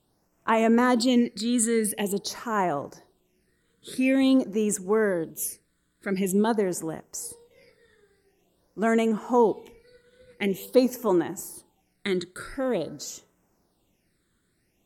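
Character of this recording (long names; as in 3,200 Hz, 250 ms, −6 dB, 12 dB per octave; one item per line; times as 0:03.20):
phaser sweep stages 8, 0.47 Hz, lowest notch 770–4,200 Hz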